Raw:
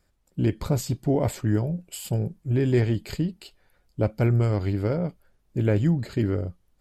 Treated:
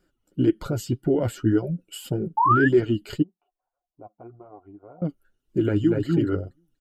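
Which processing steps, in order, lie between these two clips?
5.59–6.04 s: echo throw 240 ms, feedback 15%, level -4.5 dB; reverb removal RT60 0.62 s; peak limiter -16.5 dBFS, peak gain reduction 5.5 dB; 3.22–5.02 s: cascade formant filter a; small resonant body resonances 320/1400/2900 Hz, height 14 dB, ringing for 20 ms; 2.37–2.68 s: painted sound rise 850–1800 Hz -15 dBFS; flange 1.8 Hz, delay 5 ms, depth 5.4 ms, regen +25%

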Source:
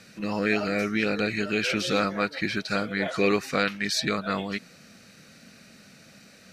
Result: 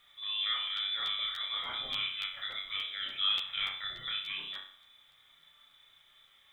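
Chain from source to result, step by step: treble shelf 2 kHz -7 dB; frequency inversion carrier 3.7 kHz; flange 0.9 Hz, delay 6.7 ms, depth 1.4 ms, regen +45%; flutter echo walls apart 5.4 m, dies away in 0.5 s; bit crusher 11-bit; crackling interface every 0.29 s, samples 512, repeat, from 0.76 s; trim -7 dB

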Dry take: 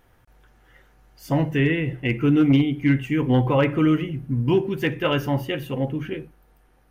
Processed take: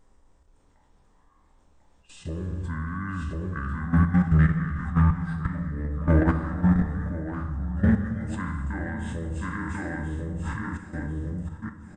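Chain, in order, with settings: spectral sustain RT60 0.32 s; hum notches 50/100/150/200/250 Hz; on a send: feedback delay 602 ms, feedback 24%, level -4 dB; on the sum: level held to a coarse grid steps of 16 dB; gated-style reverb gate 350 ms falling, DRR 8.5 dB; speed mistake 78 rpm record played at 45 rpm; bass shelf 64 Hz +10.5 dB; band-stop 720 Hz, Q 20; in parallel at -6 dB: saturation -21.5 dBFS, distortion -5 dB; on the sum: dynamic bell 2 kHz, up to +6 dB, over -46 dBFS, Q 1.6; trim -4.5 dB

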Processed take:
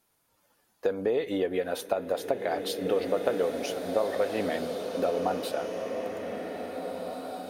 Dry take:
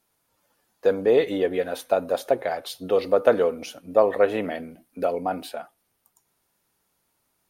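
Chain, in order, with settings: compression 6:1, threshold -24 dBFS, peak gain reduction 12.5 dB; swelling reverb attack 2040 ms, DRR 4 dB

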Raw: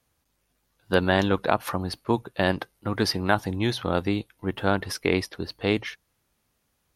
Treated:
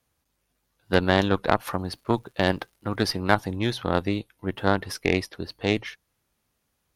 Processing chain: Chebyshev shaper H 2 -8 dB, 7 -36 dB, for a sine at -5 dBFS; 1.43–3.14 s: crackle 150 per s -48 dBFS; trim -1 dB

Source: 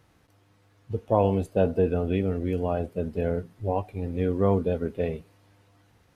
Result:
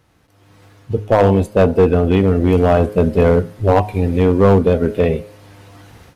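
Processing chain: de-hum 104.8 Hz, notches 23; level rider gain up to 16 dB; overload inside the chain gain 9 dB; 3.78–5.14 s: tape noise reduction on one side only encoder only; trim +4 dB

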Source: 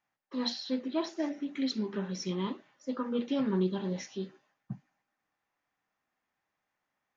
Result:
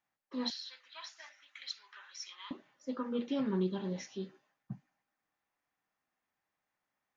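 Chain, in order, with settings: 0.50–2.51 s: high-pass 1.2 kHz 24 dB/octave; trim -3.5 dB

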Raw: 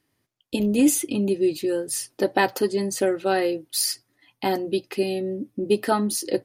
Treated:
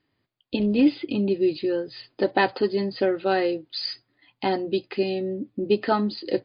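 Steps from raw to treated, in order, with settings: MP3 40 kbps 11.025 kHz

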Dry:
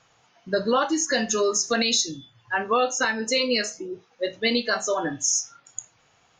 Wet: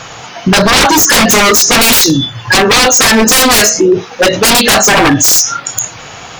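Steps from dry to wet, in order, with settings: wavefolder -26.5 dBFS; loudness maximiser +34 dB; trim -1 dB

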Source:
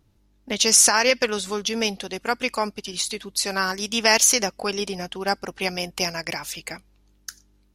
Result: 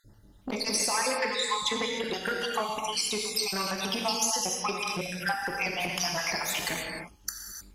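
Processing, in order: random holes in the spectrogram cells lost 60%; 1.19–1.99 s: rippled EQ curve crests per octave 1, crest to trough 16 dB; compression 6:1, threshold -37 dBFS, peak gain reduction 21 dB; gated-style reverb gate 330 ms flat, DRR 0 dB; transformer saturation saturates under 1.3 kHz; trim +9 dB

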